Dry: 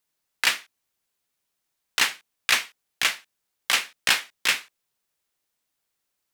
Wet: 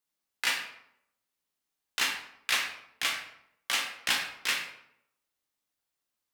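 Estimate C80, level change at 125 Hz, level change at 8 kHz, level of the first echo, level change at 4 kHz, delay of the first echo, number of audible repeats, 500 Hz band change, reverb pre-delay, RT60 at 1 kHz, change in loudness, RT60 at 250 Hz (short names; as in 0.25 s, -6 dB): 8.5 dB, n/a, -6.5 dB, none, -6.0 dB, none, none, -5.5 dB, 7 ms, 0.70 s, -6.5 dB, 0.85 s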